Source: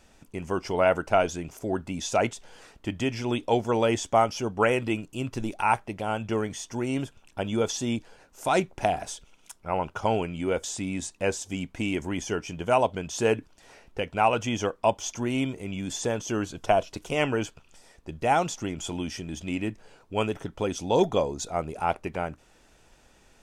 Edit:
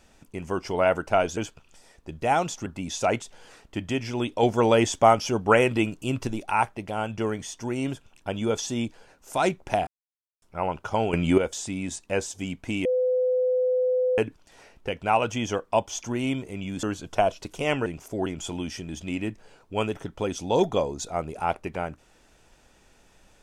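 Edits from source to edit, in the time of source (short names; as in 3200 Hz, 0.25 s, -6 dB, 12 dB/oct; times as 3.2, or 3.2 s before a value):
1.37–1.77 swap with 17.37–18.66
3.54–5.38 gain +4 dB
8.98–9.53 mute
10.24–10.49 gain +10 dB
11.96–13.29 bleep 506 Hz -20 dBFS
15.94–16.34 cut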